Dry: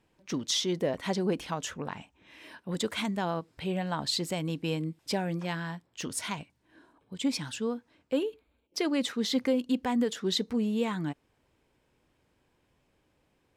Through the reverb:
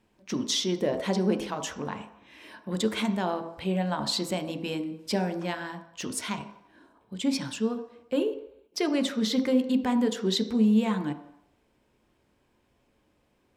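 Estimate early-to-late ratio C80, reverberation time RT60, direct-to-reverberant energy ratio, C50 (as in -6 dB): 13.5 dB, 0.75 s, 6.5 dB, 11.0 dB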